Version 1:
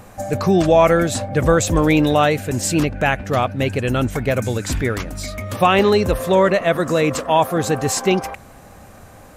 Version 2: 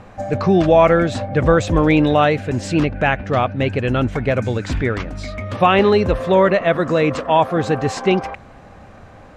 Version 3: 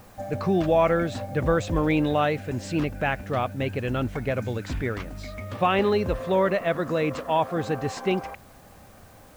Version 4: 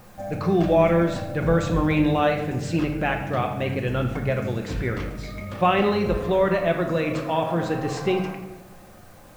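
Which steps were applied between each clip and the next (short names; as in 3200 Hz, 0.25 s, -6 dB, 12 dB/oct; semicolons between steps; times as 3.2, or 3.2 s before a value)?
LPF 3600 Hz 12 dB/oct; gain +1 dB
added noise white -50 dBFS; gain -8.5 dB
shoebox room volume 460 m³, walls mixed, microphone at 0.9 m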